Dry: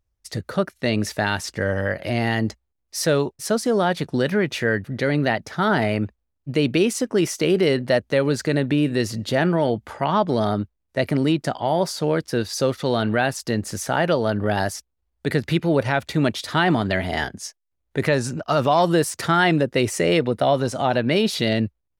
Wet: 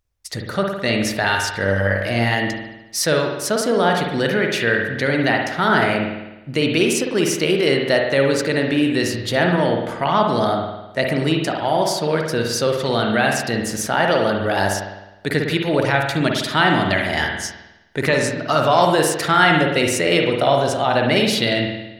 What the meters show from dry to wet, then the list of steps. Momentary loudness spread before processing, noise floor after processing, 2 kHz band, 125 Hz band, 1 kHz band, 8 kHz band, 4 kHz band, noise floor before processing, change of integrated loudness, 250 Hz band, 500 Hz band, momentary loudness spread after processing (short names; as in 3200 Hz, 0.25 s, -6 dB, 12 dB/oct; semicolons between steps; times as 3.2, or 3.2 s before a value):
7 LU, -41 dBFS, +6.0 dB, +0.5 dB, +4.5 dB, +5.0 dB, +6.0 dB, -76 dBFS, +3.0 dB, +1.0 dB, +2.5 dB, 7 LU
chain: tilt shelf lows -3.5 dB, about 790 Hz; spring tank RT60 1 s, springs 51 ms, chirp 25 ms, DRR 1.5 dB; gain +1.5 dB